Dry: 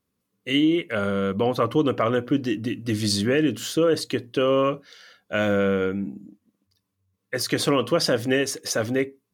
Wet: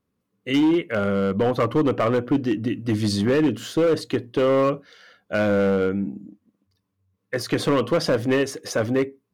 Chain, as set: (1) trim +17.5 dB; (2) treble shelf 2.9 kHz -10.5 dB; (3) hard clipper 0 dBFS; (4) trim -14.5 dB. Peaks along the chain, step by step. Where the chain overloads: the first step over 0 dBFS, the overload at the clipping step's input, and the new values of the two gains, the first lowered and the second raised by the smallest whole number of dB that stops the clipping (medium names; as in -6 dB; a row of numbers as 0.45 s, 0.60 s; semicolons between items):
+7.5 dBFS, +7.0 dBFS, 0.0 dBFS, -14.5 dBFS; step 1, 7.0 dB; step 1 +10.5 dB, step 4 -7.5 dB